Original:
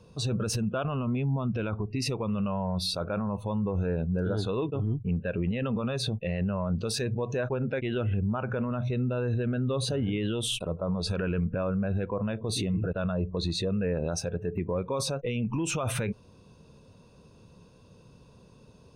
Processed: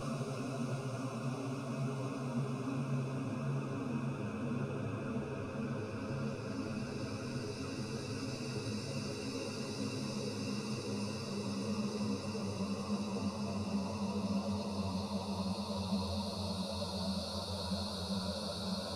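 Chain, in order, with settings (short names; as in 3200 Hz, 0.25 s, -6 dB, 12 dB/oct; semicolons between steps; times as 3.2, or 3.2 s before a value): thinning echo 0.321 s, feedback 47%, high-pass 190 Hz, level -3.5 dB; Paulstretch 10×, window 1.00 s, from 1.1; ensemble effect; gain -7 dB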